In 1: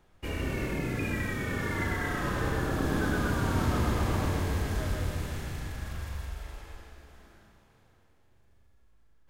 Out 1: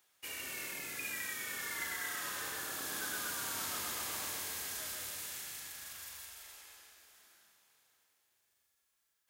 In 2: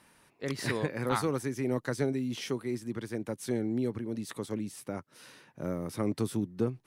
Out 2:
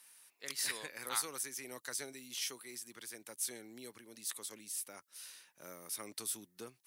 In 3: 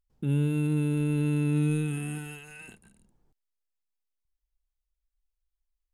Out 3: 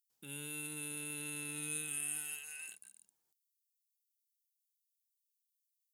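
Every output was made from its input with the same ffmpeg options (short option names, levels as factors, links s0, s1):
-af "aderivative,volume=2"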